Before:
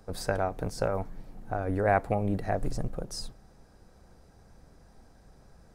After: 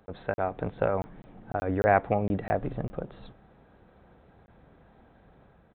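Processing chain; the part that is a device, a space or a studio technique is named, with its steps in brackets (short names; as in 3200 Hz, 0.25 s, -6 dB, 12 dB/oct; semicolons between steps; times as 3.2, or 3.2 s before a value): call with lost packets (HPF 110 Hz 6 dB/oct; downsampling 8000 Hz; AGC gain up to 4.5 dB; packet loss packets of 20 ms random); gain -1.5 dB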